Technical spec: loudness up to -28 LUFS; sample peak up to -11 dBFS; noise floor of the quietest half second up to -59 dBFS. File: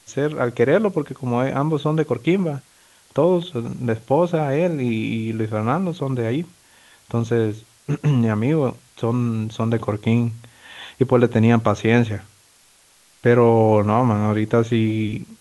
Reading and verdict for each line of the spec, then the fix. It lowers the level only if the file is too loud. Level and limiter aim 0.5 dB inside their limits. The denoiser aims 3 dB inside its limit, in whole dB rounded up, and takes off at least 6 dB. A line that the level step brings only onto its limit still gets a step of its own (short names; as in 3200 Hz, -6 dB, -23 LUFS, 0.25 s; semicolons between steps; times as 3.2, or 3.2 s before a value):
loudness -20.5 LUFS: fail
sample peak -3.0 dBFS: fail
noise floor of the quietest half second -55 dBFS: fail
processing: gain -8 dB; limiter -11.5 dBFS